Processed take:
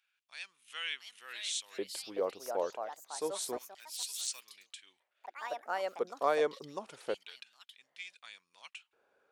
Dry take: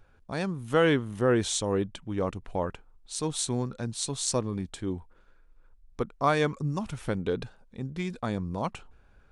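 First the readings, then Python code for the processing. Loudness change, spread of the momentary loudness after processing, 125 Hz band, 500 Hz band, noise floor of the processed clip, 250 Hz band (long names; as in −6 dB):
−8.0 dB, 18 LU, −32.0 dB, −7.0 dB, −82 dBFS, −19.5 dB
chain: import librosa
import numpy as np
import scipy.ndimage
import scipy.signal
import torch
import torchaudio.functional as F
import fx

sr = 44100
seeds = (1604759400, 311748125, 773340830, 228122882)

y = fx.filter_lfo_highpass(x, sr, shape='square', hz=0.28, low_hz=470.0, high_hz=2600.0, q=2.3)
y = fx.echo_pitch(y, sr, ms=748, semitones=4, count=3, db_per_echo=-6.0)
y = F.gain(torch.from_numpy(y), -8.5).numpy()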